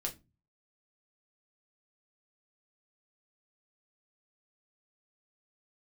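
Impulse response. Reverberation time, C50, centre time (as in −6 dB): non-exponential decay, 16.5 dB, 17 ms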